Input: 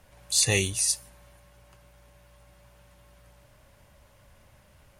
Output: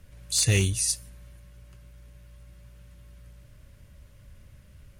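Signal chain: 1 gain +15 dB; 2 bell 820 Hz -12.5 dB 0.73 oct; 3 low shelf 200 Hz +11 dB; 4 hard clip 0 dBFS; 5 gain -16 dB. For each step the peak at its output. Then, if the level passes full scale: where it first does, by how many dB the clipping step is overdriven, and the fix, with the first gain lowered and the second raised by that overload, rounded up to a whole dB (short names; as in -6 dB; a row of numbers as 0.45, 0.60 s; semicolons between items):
+8.0, +8.0, +8.0, 0.0, -16.0 dBFS; step 1, 8.0 dB; step 1 +7 dB, step 5 -8 dB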